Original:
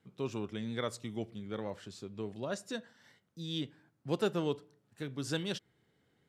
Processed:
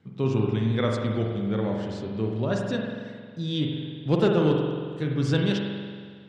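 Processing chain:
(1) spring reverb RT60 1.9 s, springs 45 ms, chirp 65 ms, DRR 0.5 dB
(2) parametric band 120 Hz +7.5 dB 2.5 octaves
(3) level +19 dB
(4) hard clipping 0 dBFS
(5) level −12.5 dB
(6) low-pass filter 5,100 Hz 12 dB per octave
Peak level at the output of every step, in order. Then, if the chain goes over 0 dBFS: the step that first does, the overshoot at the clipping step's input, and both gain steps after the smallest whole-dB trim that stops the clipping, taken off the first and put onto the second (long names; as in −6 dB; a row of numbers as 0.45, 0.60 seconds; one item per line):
−18.0, −15.0, +4.0, 0.0, −12.5, −12.5 dBFS
step 3, 4.0 dB
step 3 +15 dB, step 5 −8.5 dB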